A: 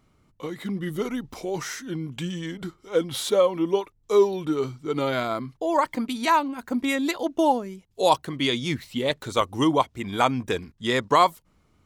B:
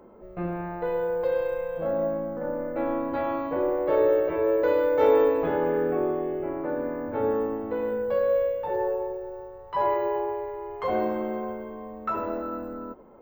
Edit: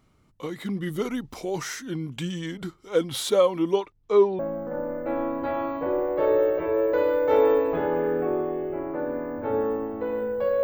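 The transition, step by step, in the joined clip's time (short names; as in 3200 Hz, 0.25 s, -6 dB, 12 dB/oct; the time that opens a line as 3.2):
A
3.75–4.39 LPF 7000 Hz -> 1600 Hz
4.39 switch to B from 2.09 s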